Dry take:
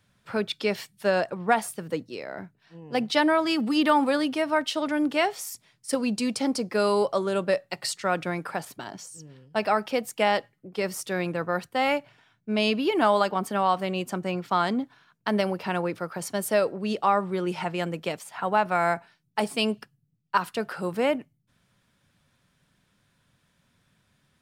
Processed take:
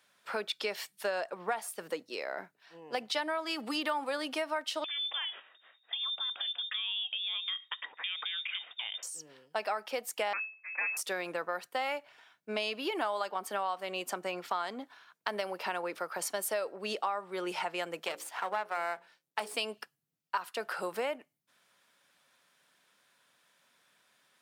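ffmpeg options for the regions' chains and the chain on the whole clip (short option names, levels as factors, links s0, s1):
-filter_complex "[0:a]asettb=1/sr,asplit=3[s0][s1][s2];[s0]atrim=end=4.844[s3];[s1]atrim=start=4.84:end=9.03,asetpts=PTS-STARTPTS,afade=t=in:d=0.004:c=qsin,afade=t=out:st=4.186:d=0.004:c=qsin,acompressor=threshold=0.0224:ratio=5:attack=3.2:release=140:knee=1:detection=peak,lowpass=f=3200:t=q:w=0.5098,lowpass=f=3200:t=q:w=0.6013,lowpass=f=3200:t=q:w=0.9,lowpass=f=3200:t=q:w=2.563,afreqshift=-3800[s4];[s2]atrim=start=9.026[s5];[s3][s4]acrossfade=d=0.004:c1=hsin:c2=qsin[s6];[s6][s5]acrossfade=d=0.004:c1=qsin:c2=hsin,asettb=1/sr,asplit=3[s7][s8][s9];[s7]atrim=end=10.334[s10];[s8]atrim=start=10.33:end=10.97,asetpts=PTS-STARTPTS,afade=t=in:d=0.004:c=qsin,afade=t=out:st=0.636:d=0.004:c=qsin,aeval=exprs='abs(val(0))':c=same,lowpass=f=2200:t=q:w=0.5098,lowpass=f=2200:t=q:w=0.6013,lowpass=f=2200:t=q:w=0.9,lowpass=f=2200:t=q:w=2.563,afreqshift=-2600[s11];[s9]atrim=start=10.966[s12];[s10][s11]acrossfade=d=0.004:c1=hsin:c2=qsin[s13];[s13][s12]acrossfade=d=0.004:c1=qsin:c2=hsin,asettb=1/sr,asplit=3[s14][s15][s16];[s14]atrim=end=18.034[s17];[s15]atrim=start=18.03:end=19.54,asetpts=PTS-STARTPTS,afade=t=in:d=0.004:c=qsin,afade=t=out:st=1.506:d=0.004:c=qsin,aeval=exprs='if(lt(val(0),0),0.447*val(0),val(0))':c=same,bandreject=f=60:t=h:w=6,bandreject=f=120:t=h:w=6,bandreject=f=180:t=h:w=6,bandreject=f=240:t=h:w=6,bandreject=f=300:t=h:w=6,bandreject=f=360:t=h:w=6,bandreject=f=420:t=h:w=6,bandreject=f=480:t=h:w=6,bandreject=f=540:t=h:w=6[s18];[s16]atrim=start=19.536[s19];[s17][s18]acrossfade=d=0.004:c1=hsin:c2=qsin[s20];[s20][s19]acrossfade=d=0.004:c1=qsin:c2=hsin,highpass=520,equalizer=f=14000:w=1.2:g=2.5,acompressor=threshold=0.02:ratio=4,volume=1.26"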